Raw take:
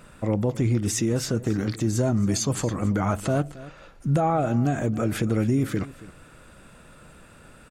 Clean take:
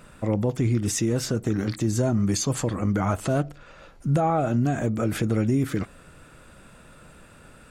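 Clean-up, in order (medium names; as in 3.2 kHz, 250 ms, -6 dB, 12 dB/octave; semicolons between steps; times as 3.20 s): inverse comb 273 ms -18 dB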